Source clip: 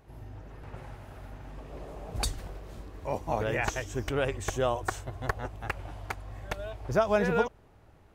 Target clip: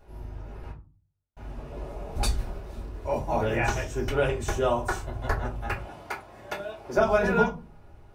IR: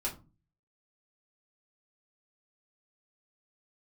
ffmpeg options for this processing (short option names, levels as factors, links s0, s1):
-filter_complex "[0:a]asettb=1/sr,asplit=3[s0][s1][s2];[s0]atrim=end=0.714[s3];[s1]atrim=start=0.71:end=1.37,asetpts=PTS-STARTPTS,afade=t=in:d=0.004:c=qsin,afade=t=out:st=0.656:d=0.004:c=qsin,agate=range=0.00178:threshold=0.0178:ratio=16:detection=peak[s4];[s2]atrim=start=1.366[s5];[s3][s4]acrossfade=d=0.004:c1=hsin:c2=qsin[s6];[s6][s5]acrossfade=d=0.004:c1=qsin:c2=hsin,asettb=1/sr,asplit=3[s7][s8][s9];[s7]atrim=end=5.754[s10];[s8]atrim=start=5.75:end=6.98,asetpts=PTS-STARTPTS,afade=t=in:d=0.004:c=qsin,afade=t=out:st=1.226:d=0.004:c=qsin,highpass=200[s11];[s9]atrim=start=6.976[s12];[s10][s11]acrossfade=d=0.004:c1=hsin:c2=qsin[s13];[s13][s12]acrossfade=d=0.004:c1=qsin:c2=hsin[s14];[1:a]atrim=start_sample=2205[s15];[s14][s15]afir=irnorm=-1:irlink=0"